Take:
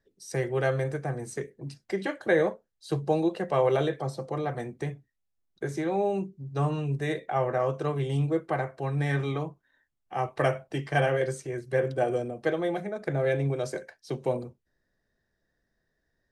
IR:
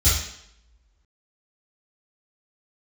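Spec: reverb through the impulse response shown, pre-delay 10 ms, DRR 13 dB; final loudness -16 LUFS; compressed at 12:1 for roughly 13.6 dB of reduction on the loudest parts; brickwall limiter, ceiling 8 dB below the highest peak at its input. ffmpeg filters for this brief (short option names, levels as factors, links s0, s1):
-filter_complex "[0:a]acompressor=threshold=0.0224:ratio=12,alimiter=level_in=1.78:limit=0.0631:level=0:latency=1,volume=0.562,asplit=2[s0][s1];[1:a]atrim=start_sample=2205,adelay=10[s2];[s1][s2]afir=irnorm=-1:irlink=0,volume=0.0398[s3];[s0][s3]amix=inputs=2:normalize=0,volume=14.1"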